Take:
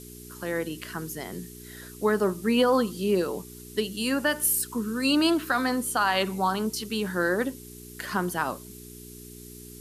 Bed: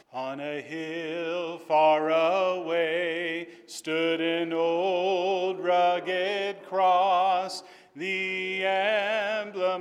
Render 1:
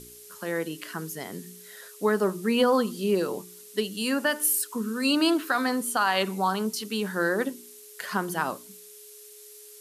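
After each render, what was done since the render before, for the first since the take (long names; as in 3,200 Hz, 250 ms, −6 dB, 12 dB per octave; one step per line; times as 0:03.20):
hum removal 60 Hz, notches 6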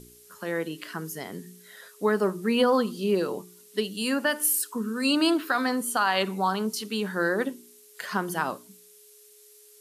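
noise reduction from a noise print 6 dB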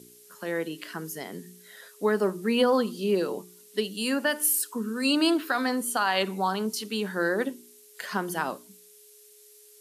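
high-pass filter 160 Hz
parametric band 1,200 Hz −3 dB 0.66 octaves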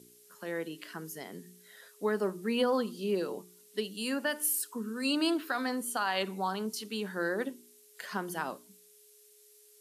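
level −6 dB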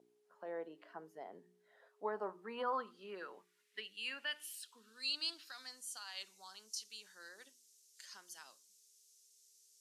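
band-pass filter sweep 710 Hz → 6,000 Hz, 0:01.86–0:05.71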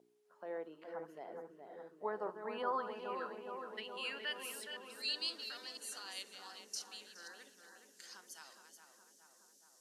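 delay that plays each chunk backwards 251 ms, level −9 dB
on a send: feedback echo with a low-pass in the loop 418 ms, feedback 75%, low-pass 1,800 Hz, level −6 dB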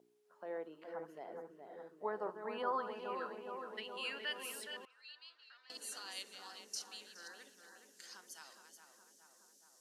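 0:04.85–0:05.70: four-pole ladder band-pass 1,700 Hz, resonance 20%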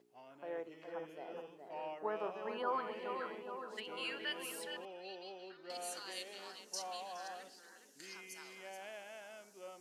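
mix in bed −24.5 dB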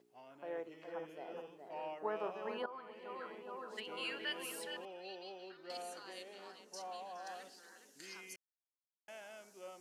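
0:02.66–0:03.81: fade in linear, from −15.5 dB
0:05.82–0:07.27: high-shelf EQ 2,100 Hz −9.5 dB
0:08.36–0:09.08: silence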